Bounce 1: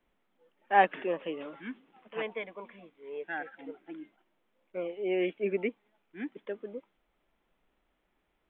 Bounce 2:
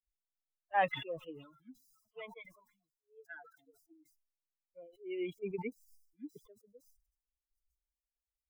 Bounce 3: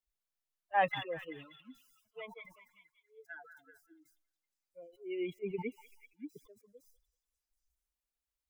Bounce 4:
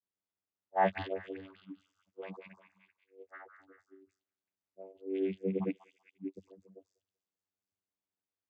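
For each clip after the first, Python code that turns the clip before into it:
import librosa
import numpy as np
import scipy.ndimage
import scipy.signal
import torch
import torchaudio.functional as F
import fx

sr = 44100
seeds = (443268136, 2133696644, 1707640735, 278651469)

y1 = fx.bin_expand(x, sr, power=3.0)
y1 = fx.sustainer(y1, sr, db_per_s=86.0)
y1 = y1 * librosa.db_to_amplitude(-5.0)
y2 = fx.echo_stepped(y1, sr, ms=192, hz=1300.0, octaves=0.7, feedback_pct=70, wet_db=-9.5)
y2 = y2 * librosa.db_to_amplitude(1.0)
y3 = fx.vocoder(y2, sr, bands=16, carrier='saw', carrier_hz=95.6)
y3 = fx.dispersion(y3, sr, late='highs', ms=42.0, hz=1100.0)
y3 = y3 * librosa.db_to_amplitude(3.5)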